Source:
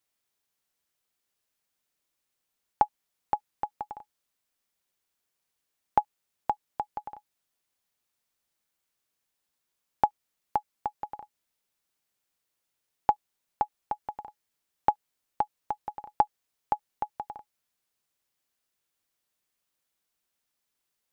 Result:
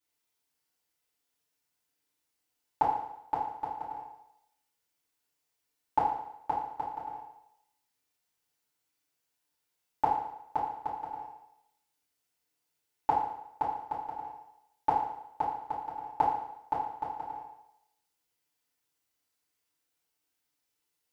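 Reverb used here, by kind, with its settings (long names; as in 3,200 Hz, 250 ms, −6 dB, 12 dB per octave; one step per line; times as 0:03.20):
feedback delay network reverb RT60 0.81 s, low-frequency decay 0.85×, high-frequency decay 1×, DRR −9.5 dB
level −10 dB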